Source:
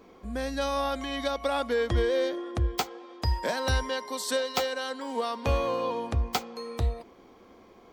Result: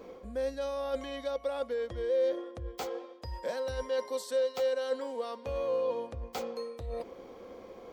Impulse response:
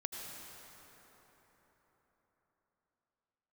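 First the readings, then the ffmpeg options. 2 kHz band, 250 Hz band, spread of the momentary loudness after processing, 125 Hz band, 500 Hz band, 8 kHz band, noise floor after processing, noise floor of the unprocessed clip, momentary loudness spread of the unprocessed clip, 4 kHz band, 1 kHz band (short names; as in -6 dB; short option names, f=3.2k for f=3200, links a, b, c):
-11.5 dB, -9.5 dB, 12 LU, -14.5 dB, -1.0 dB, -11.0 dB, -51 dBFS, -54 dBFS, 6 LU, -11.5 dB, -10.0 dB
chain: -af "areverse,acompressor=threshold=-40dB:ratio=6,areverse,equalizer=f=520:w=4.2:g=13,volume=1.5dB"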